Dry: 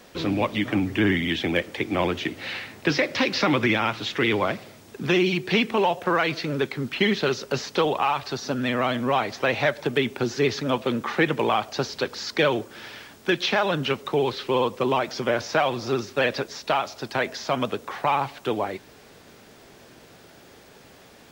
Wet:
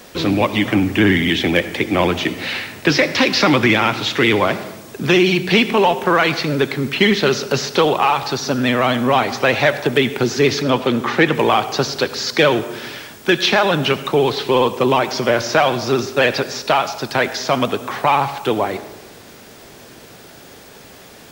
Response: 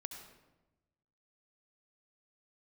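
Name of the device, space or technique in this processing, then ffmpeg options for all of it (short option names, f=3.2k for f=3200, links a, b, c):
saturated reverb return: -filter_complex "[0:a]asplit=2[a][b];[1:a]atrim=start_sample=2205[c];[b][c]afir=irnorm=-1:irlink=0,asoftclip=type=tanh:threshold=-18.5dB,volume=-1dB[d];[a][d]amix=inputs=2:normalize=0,asettb=1/sr,asplit=3[e][f][g];[e]atrim=end=10.624[h];[f]atrim=start=10.62:end=11.35,asetpts=PTS-STARTPTS,afade=t=in:d=0.004:c=qsin,afade=t=out:st=0.726:d=0.004:c=qsin,acrossover=split=6700[i][j];[j]acompressor=threshold=-55dB:ratio=4:attack=1:release=60[k];[i][k]amix=inputs=2:normalize=0[l];[g]atrim=start=11.346[m];[h][l]acrossfade=d=0.004:c1=hsin:c2=qsin[n];[n][m]acrossfade=d=0.004:c1=qsin:c2=hsin,highshelf=f=6.7k:g=6,volume=4dB"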